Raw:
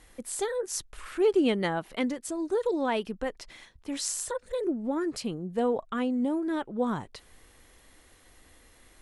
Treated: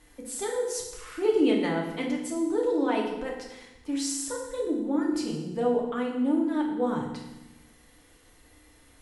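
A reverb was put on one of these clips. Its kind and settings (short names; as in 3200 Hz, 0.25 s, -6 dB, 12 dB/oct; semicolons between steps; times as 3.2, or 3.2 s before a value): FDN reverb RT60 0.99 s, low-frequency decay 1.45×, high-frequency decay 0.95×, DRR -1.5 dB; gain -4 dB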